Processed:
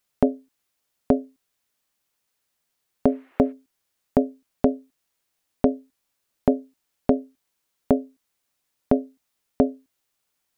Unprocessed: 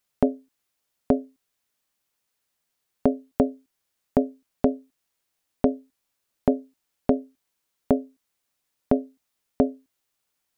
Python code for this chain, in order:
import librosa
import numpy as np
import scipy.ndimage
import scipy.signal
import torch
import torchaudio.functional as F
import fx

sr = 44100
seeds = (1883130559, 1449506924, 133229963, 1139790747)

y = fx.dmg_noise_band(x, sr, seeds[0], low_hz=330.0, high_hz=2400.0, level_db=-62.0, at=(3.06, 3.51), fade=0.02)
y = F.gain(torch.from_numpy(y), 1.5).numpy()